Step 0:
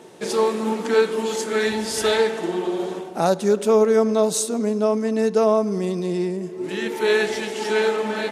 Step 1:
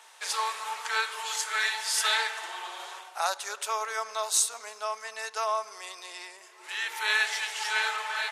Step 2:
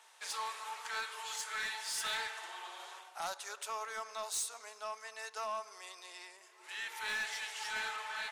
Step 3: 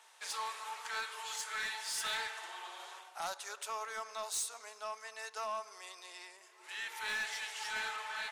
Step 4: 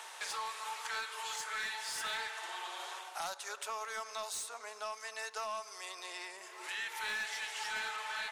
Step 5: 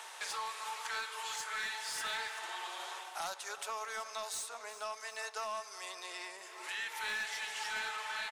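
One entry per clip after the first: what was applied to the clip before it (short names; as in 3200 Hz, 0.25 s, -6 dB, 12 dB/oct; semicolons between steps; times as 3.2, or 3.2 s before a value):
HPF 960 Hz 24 dB/oct
soft clip -23.5 dBFS, distortion -13 dB; gain -8 dB
nothing audible
three-band squash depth 70%
feedback echo 0.374 s, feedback 54%, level -15.5 dB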